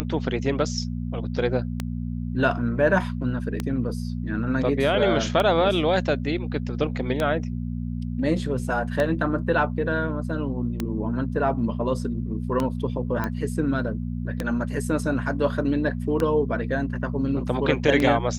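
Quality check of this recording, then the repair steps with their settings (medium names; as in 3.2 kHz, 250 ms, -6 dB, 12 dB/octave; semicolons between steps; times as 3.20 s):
hum 60 Hz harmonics 4 -29 dBFS
tick 33 1/3 rpm -11 dBFS
13.24 s: pop -14 dBFS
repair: de-click; de-hum 60 Hz, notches 4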